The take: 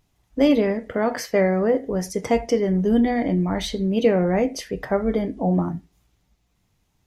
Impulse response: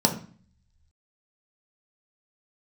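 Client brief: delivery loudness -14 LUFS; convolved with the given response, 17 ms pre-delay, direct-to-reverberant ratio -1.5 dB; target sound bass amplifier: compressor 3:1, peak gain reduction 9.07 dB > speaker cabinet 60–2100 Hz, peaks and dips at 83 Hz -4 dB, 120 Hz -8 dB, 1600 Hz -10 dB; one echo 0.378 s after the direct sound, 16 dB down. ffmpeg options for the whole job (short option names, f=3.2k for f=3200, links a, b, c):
-filter_complex "[0:a]aecho=1:1:378:0.158,asplit=2[a][b];[1:a]atrim=start_sample=2205,adelay=17[c];[b][c]afir=irnorm=-1:irlink=0,volume=-12dB[d];[a][d]amix=inputs=2:normalize=0,acompressor=threshold=-13dB:ratio=3,highpass=f=60:w=0.5412,highpass=f=60:w=1.3066,equalizer=f=83:t=q:w=4:g=-4,equalizer=f=120:t=q:w=4:g=-8,equalizer=f=1.6k:t=q:w=4:g=-10,lowpass=f=2.1k:w=0.5412,lowpass=f=2.1k:w=1.3066,volume=3dB"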